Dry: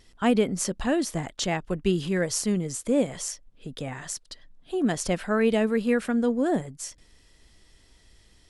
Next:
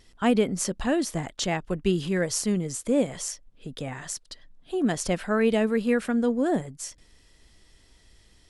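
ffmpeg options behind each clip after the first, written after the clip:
ffmpeg -i in.wav -af anull out.wav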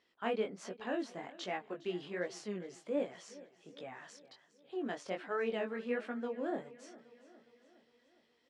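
ffmpeg -i in.wav -af "flanger=delay=16:depth=6.9:speed=1.3,highpass=350,lowpass=3300,aecho=1:1:410|820|1230|1640|2050:0.112|0.0617|0.0339|0.0187|0.0103,volume=-7dB" out.wav

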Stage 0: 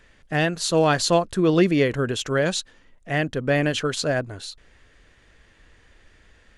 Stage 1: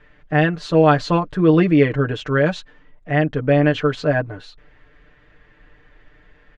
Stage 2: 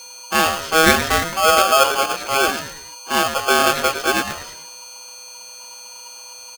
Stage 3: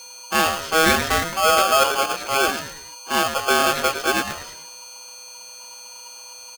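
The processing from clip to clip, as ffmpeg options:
ffmpeg -i in.wav -af "lowpass=2300,aecho=1:1:6.7:0.8,volume=2dB" out.wav
ffmpeg -i in.wav -filter_complex "[0:a]aeval=exprs='val(0)+0.0178*sin(2*PI*5300*n/s)':channel_layout=same,asplit=5[link_01][link_02][link_03][link_04][link_05];[link_02]adelay=107,afreqshift=120,volume=-10dB[link_06];[link_03]adelay=214,afreqshift=240,volume=-18dB[link_07];[link_04]adelay=321,afreqshift=360,volume=-25.9dB[link_08];[link_05]adelay=428,afreqshift=480,volume=-33.9dB[link_09];[link_01][link_06][link_07][link_08][link_09]amix=inputs=5:normalize=0,aeval=exprs='val(0)*sgn(sin(2*PI*960*n/s))':channel_layout=same,volume=-1dB" out.wav
ffmpeg -i in.wav -af "asoftclip=type=hard:threshold=-9dB,volume=-2dB" out.wav

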